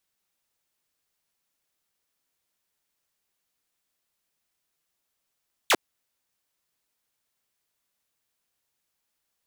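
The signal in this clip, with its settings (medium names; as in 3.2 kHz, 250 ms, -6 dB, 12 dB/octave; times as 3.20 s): laser zap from 4.2 kHz, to 250 Hz, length 0.05 s saw, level -14 dB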